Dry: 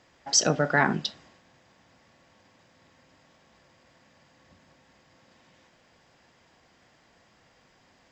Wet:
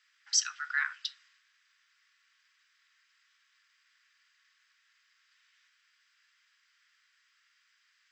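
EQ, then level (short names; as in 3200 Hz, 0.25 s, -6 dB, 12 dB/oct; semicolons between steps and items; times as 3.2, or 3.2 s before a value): steep high-pass 1300 Hz 48 dB/oct; notch 6800 Hz, Q 14; -5.0 dB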